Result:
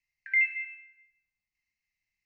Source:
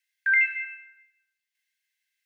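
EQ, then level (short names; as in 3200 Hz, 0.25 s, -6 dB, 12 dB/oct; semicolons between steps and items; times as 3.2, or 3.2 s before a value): tilt -5 dB/oct; high shelf 2300 Hz +7.5 dB; fixed phaser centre 2300 Hz, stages 8; 0.0 dB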